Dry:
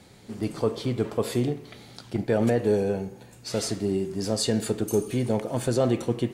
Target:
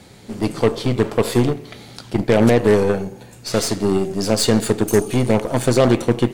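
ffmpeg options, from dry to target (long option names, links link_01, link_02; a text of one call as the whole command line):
ffmpeg -i in.wav -af "aeval=exprs='0.299*(cos(1*acos(clip(val(0)/0.299,-1,1)))-cos(1*PI/2))+0.0531*(cos(6*acos(clip(val(0)/0.299,-1,1)))-cos(6*PI/2))+0.0596*(cos(8*acos(clip(val(0)/0.299,-1,1)))-cos(8*PI/2))':channel_layout=same,volume=7.5dB" out.wav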